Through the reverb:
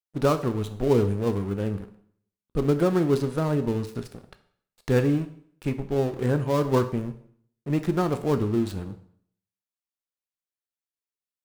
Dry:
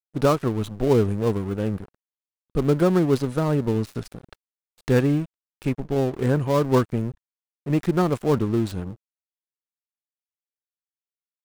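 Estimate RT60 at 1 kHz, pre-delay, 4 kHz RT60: 0.60 s, 6 ms, 0.55 s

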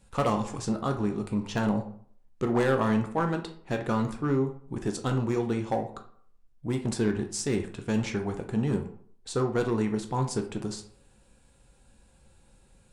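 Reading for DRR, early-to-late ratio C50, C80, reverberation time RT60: 5.0 dB, 10.0 dB, 15.0 dB, 0.55 s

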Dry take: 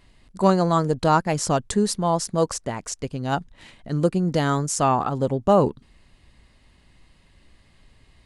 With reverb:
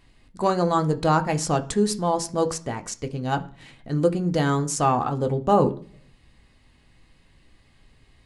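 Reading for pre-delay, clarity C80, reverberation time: 3 ms, 22.0 dB, 0.50 s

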